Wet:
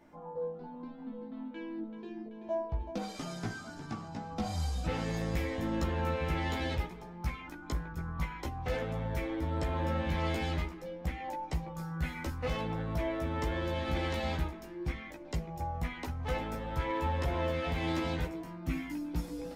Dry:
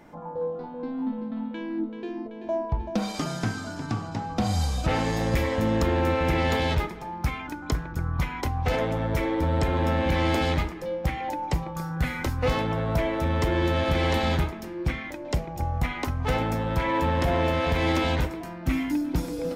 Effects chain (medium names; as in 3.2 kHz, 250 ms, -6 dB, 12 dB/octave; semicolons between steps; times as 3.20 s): chorus voices 4, 0.17 Hz, delay 15 ms, depth 3.3 ms; trim -6.5 dB